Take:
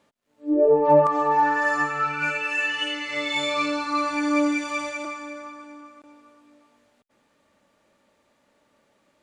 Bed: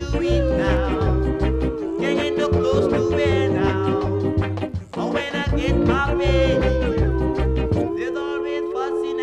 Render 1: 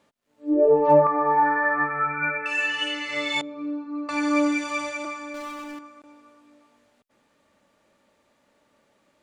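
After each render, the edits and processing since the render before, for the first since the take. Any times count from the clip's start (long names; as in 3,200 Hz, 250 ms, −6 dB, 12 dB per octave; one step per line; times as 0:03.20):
0:00.97–0:02.46: linear-phase brick-wall low-pass 2,600 Hz
0:03.41–0:04.09: resonant band-pass 280 Hz, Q 2.5
0:05.34–0:05.79: power curve on the samples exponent 0.5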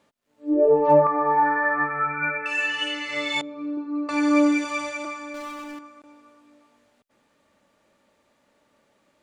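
0:03.77–0:04.65: parametric band 390 Hz +8 dB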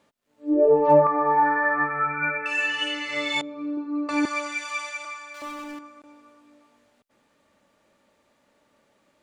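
0:04.25–0:05.42: high-pass filter 1,100 Hz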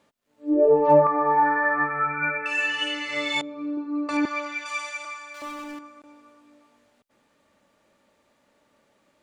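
0:04.17–0:04.66: high-frequency loss of the air 130 metres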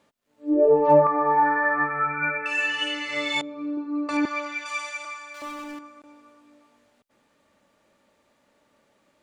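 no processing that can be heard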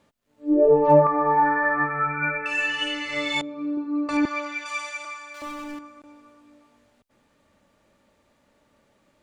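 low-shelf EQ 130 Hz +12 dB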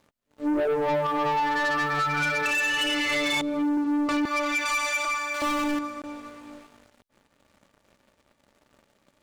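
downward compressor 8 to 1, threshold −29 dBFS, peak gain reduction 18 dB
leveller curve on the samples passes 3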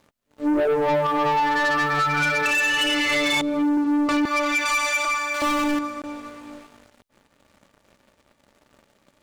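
level +4 dB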